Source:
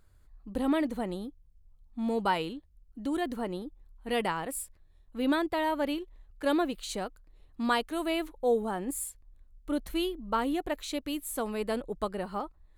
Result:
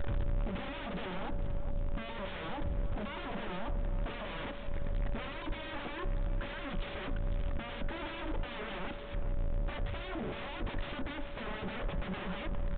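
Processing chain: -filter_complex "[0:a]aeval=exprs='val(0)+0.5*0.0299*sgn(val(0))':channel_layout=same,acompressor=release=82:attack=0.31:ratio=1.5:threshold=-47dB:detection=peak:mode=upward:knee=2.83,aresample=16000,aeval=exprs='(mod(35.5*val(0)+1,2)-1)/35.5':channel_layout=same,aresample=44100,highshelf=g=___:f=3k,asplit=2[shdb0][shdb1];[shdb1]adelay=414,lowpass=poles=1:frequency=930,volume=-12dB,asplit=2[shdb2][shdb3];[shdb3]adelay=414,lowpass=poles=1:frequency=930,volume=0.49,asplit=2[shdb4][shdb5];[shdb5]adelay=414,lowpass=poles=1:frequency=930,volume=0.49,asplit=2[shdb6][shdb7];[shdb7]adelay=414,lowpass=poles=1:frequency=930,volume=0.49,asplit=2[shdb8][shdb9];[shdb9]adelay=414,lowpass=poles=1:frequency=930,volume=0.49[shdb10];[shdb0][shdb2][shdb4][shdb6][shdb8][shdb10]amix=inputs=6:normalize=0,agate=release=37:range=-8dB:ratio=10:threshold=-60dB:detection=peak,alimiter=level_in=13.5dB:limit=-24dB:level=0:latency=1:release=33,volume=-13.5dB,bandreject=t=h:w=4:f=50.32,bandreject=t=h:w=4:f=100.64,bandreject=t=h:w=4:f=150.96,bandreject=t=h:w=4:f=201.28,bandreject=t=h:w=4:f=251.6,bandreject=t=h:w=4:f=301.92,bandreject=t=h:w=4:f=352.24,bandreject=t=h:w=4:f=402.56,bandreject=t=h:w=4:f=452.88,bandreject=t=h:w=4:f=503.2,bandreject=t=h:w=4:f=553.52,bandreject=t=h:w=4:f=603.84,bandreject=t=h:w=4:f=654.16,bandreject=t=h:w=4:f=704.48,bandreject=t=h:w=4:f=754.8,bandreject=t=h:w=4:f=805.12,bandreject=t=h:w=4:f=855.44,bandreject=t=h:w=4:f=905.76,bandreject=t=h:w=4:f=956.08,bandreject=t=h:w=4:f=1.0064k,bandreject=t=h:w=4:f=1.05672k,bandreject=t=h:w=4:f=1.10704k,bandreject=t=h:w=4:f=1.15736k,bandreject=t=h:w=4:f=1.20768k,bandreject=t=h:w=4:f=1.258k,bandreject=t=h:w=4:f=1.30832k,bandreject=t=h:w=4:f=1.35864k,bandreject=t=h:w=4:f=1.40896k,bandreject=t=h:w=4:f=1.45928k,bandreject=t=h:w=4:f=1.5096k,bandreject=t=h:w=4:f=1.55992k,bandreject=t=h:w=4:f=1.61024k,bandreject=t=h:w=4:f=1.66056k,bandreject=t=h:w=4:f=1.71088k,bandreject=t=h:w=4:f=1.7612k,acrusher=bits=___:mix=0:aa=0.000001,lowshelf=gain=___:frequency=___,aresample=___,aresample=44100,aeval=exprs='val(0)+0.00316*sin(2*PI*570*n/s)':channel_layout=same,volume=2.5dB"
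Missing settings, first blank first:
-8, 10, 6.5, 170, 8000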